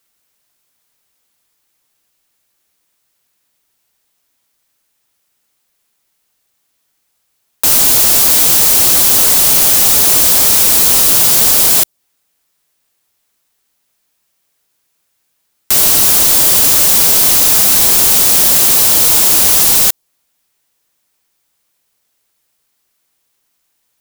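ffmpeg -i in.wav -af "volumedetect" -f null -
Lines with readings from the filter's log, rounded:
mean_volume: -13.2 dB
max_volume: -2.4 dB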